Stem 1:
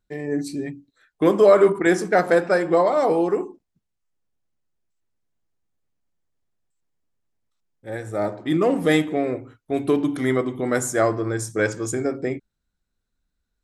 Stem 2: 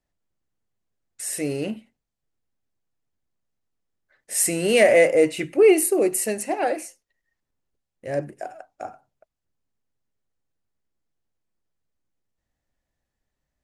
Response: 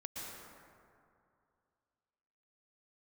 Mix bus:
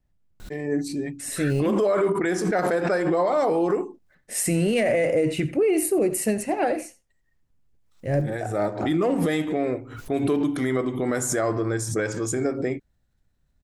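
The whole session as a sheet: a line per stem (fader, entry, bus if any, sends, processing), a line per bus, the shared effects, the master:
−0.5 dB, 0.40 s, no send, no echo send, background raised ahead of every attack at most 87 dB per second
+0.5 dB, 0.00 s, no send, echo send −18.5 dB, bass and treble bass +13 dB, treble −4 dB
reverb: not used
echo: single-tap delay 85 ms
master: brickwall limiter −14.5 dBFS, peak gain reduction 11 dB

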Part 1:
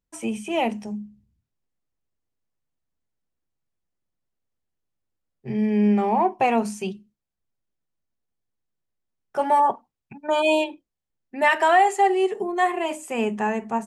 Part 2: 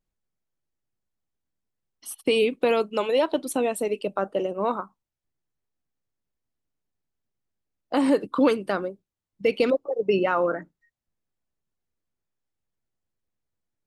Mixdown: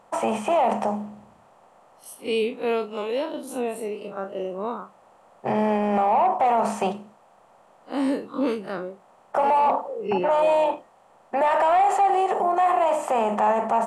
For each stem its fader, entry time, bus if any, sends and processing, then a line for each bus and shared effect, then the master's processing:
−4.5 dB, 0.00 s, no send, compressor on every frequency bin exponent 0.6; flat-topped bell 810 Hz +13 dB
−1.0 dB, 0.00 s, no send, spectrum smeared in time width 85 ms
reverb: not used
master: soft clipping −2 dBFS, distortion −20 dB; brickwall limiter −13.5 dBFS, peak gain reduction 10.5 dB

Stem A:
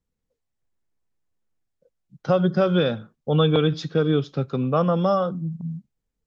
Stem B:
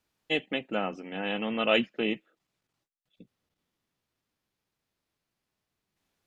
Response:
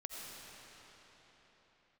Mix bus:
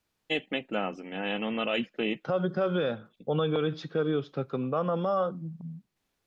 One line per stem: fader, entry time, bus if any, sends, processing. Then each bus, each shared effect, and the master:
−3.0 dB, 0.00 s, no send, bass and treble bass −8 dB, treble −12 dB
0.0 dB, 0.00 s, no send, no processing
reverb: not used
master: brickwall limiter −18.5 dBFS, peak gain reduction 7.5 dB

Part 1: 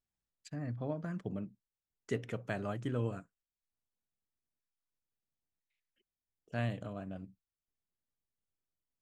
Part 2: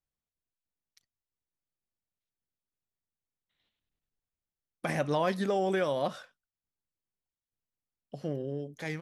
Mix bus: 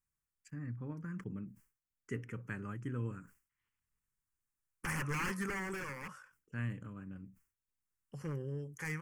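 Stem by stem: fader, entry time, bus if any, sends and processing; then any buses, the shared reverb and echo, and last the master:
−2.0 dB, 0.00 s, no send, no processing
0.0 dB, 0.00 s, no send, octave-band graphic EQ 125/250/1,000/8,000 Hz +3/−9/+6/+7 dB; wave folding −28 dBFS; automatic ducking −12 dB, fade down 1.05 s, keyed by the first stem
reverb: not used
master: phaser with its sweep stopped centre 1,600 Hz, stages 4; level that may fall only so fast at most 150 dB per second

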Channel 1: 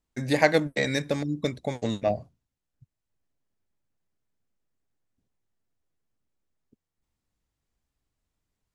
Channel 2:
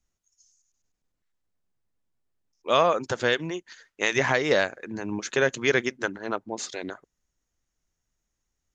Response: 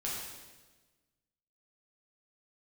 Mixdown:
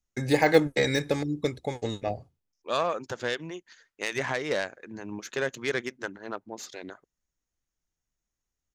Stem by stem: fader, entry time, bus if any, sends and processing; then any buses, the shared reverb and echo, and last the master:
+2.5 dB, 0.00 s, no send, de-essing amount 75%; comb filter 2.4 ms, depth 42%; downward expander −51 dBFS; automatic ducking −8 dB, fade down 1.95 s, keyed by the second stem
−6.5 dB, 0.00 s, no send, phase distortion by the signal itself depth 0.072 ms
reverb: not used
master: no processing

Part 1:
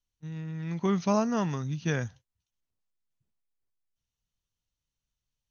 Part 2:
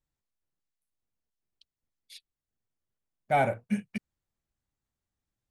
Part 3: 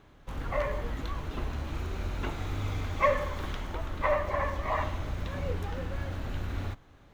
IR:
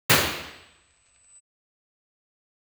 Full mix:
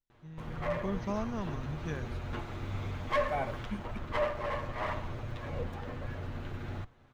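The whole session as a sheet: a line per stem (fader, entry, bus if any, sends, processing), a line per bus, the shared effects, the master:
−9.0 dB, 0.00 s, no send, no processing
−9.5 dB, 0.00 s, no send, no processing
−2.5 dB, 0.10 s, no send, lower of the sound and its delayed copy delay 8.4 ms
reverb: not used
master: high-shelf EQ 4,400 Hz −9.5 dB

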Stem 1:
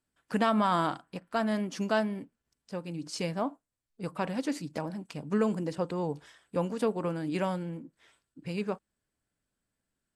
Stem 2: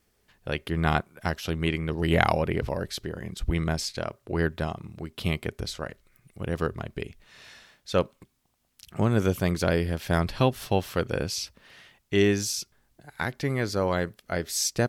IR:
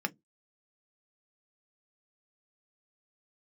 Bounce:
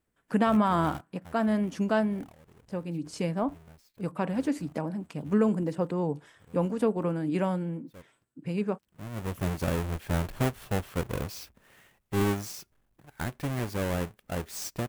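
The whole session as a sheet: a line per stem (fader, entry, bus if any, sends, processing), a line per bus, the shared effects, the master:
0.0 dB, 0.00 s, no send, high-pass filter 120 Hz; low-shelf EQ 350 Hz +6.5 dB
−15.5 dB, 0.00 s, no send, each half-wave held at its own peak; automatic gain control gain up to 6.5 dB; automatic ducking −22 dB, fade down 1.75 s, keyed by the first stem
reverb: not used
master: parametric band 4,700 Hz −6.5 dB 1.2 octaves

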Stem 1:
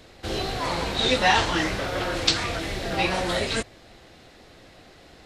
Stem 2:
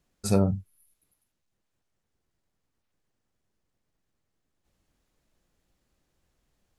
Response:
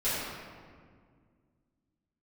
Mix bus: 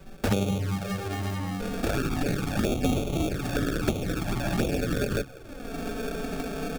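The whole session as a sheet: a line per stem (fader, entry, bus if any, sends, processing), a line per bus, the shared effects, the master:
−1.5 dB, 1.60 s, no send, comb filter 6.9 ms, depth 73%; hum removal 66.28 Hz, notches 10
−1.0 dB, 0.00 s, send −12.5 dB, no processing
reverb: on, RT60 1.9 s, pre-delay 4 ms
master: sample-rate reduction 1,000 Hz, jitter 0%; flanger swept by the level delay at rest 5.2 ms, full sweep at −20.5 dBFS; multiband upward and downward compressor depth 100%

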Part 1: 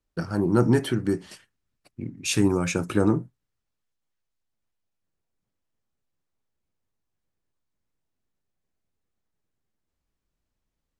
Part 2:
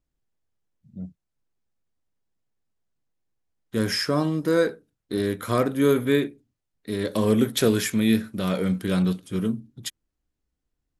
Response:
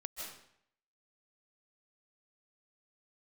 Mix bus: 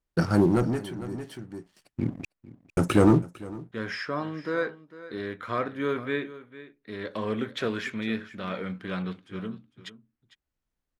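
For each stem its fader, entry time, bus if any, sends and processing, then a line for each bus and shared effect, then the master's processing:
−1.5 dB, 0.00 s, muted 0:02.25–0:02.77, no send, echo send −20 dB, leveller curve on the samples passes 2; automatic ducking −19 dB, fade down 0.55 s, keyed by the second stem
−3.5 dB, 0.00 s, no send, echo send −16 dB, low-pass filter 1,800 Hz 12 dB per octave; tilt shelving filter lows −8.5 dB, about 910 Hz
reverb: not used
echo: single-tap delay 452 ms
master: no processing

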